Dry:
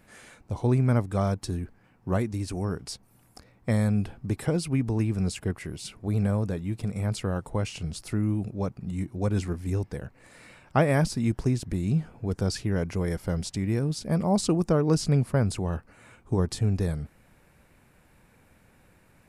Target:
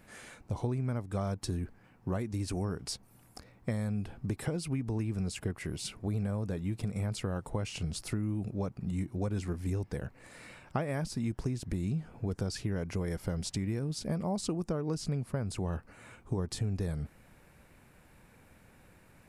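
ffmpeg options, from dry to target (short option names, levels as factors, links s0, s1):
-af "acompressor=threshold=0.0316:ratio=6"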